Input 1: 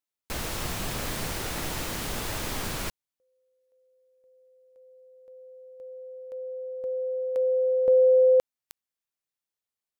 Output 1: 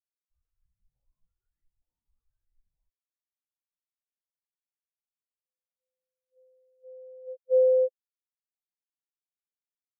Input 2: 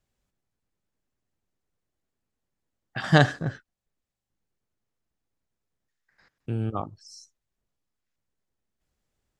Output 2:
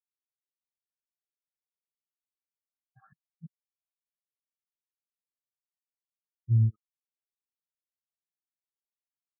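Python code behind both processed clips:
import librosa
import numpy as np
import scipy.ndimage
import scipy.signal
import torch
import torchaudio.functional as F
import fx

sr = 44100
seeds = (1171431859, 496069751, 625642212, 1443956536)

y = fx.filter_lfo_lowpass(x, sr, shape='saw_up', hz=1.1, low_hz=800.0, high_hz=2800.0, q=2.1)
y = fx.gate_flip(y, sr, shuts_db=-18.0, range_db=-38)
y = fx.spectral_expand(y, sr, expansion=4.0)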